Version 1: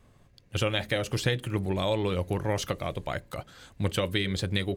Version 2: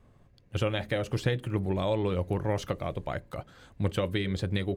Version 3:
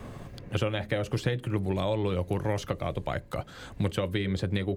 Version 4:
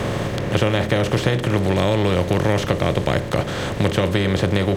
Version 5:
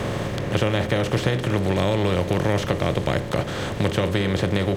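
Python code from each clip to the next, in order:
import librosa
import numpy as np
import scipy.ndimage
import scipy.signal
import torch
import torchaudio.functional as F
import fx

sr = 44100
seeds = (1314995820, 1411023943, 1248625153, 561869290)

y1 = fx.high_shelf(x, sr, hz=2200.0, db=-9.5)
y2 = fx.band_squash(y1, sr, depth_pct=70)
y3 = fx.bin_compress(y2, sr, power=0.4)
y3 = y3 * 10.0 ** (5.5 / 20.0)
y4 = y3 + 10.0 ** (-16.0 / 20.0) * np.pad(y3, (int(231 * sr / 1000.0), 0))[:len(y3)]
y4 = y4 * 10.0 ** (-3.0 / 20.0)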